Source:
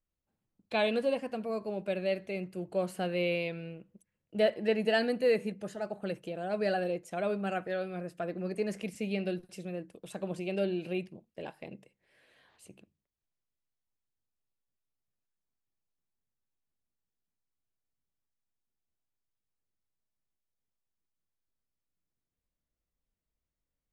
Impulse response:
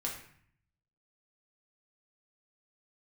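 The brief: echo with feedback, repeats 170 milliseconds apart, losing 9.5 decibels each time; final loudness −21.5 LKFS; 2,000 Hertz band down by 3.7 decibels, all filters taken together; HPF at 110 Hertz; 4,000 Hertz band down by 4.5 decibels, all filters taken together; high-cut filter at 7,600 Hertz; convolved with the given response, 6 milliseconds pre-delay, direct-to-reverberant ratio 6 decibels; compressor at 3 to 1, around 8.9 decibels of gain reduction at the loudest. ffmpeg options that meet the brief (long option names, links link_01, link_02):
-filter_complex "[0:a]highpass=110,lowpass=7600,equalizer=frequency=2000:width_type=o:gain=-3.5,equalizer=frequency=4000:width_type=o:gain=-4.5,acompressor=threshold=-35dB:ratio=3,aecho=1:1:170|340|510|680:0.335|0.111|0.0365|0.012,asplit=2[link_01][link_02];[1:a]atrim=start_sample=2205,adelay=6[link_03];[link_02][link_03]afir=irnorm=-1:irlink=0,volume=-8dB[link_04];[link_01][link_04]amix=inputs=2:normalize=0,volume=16.5dB"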